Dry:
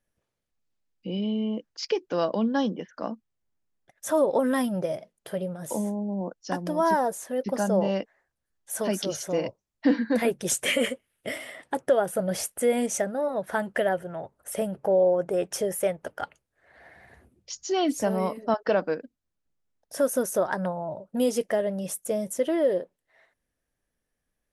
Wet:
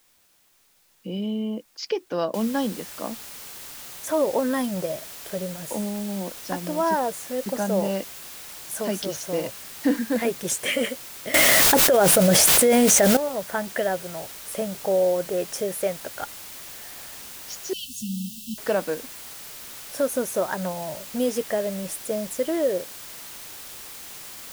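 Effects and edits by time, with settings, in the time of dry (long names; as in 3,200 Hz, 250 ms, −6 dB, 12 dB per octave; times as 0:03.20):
0:02.34: noise floor change −62 dB −40 dB
0:11.34–0:13.17: envelope flattener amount 100%
0:17.73–0:18.58: linear-phase brick-wall band-stop 240–2,600 Hz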